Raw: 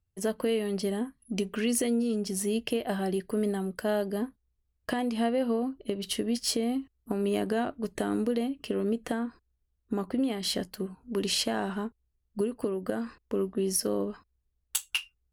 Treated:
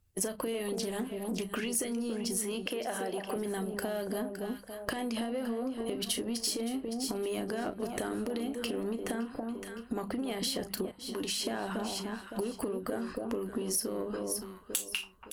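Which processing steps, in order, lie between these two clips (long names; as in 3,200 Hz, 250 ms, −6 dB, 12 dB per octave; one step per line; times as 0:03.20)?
in parallel at −3 dB: soft clipping −28.5 dBFS, distortion −11 dB
0:02.41–0:03.36: on the sum: bass and treble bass −14 dB, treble −7 dB
on a send: delay that swaps between a low-pass and a high-pass 282 ms, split 1,100 Hz, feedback 52%, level −8 dB
on the sum: brickwall limiter −19.5 dBFS, peak gain reduction 7.5 dB
mains-hum notches 50/100/150/200 Hz
double-tracking delay 35 ms −11 dB
harmonic and percussive parts rebalanced harmonic −6 dB
0:10.91–0:11.47: tuned comb filter 99 Hz, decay 0.26 s, harmonics odd, mix 70%
downward compressor 6 to 1, threshold −38 dBFS, peak gain reduction 11.5 dB
parametric band 12,000 Hz +4.5 dB 1.1 octaves
0:00.73–0:01.43: highs frequency-modulated by the lows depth 0.22 ms
level +6 dB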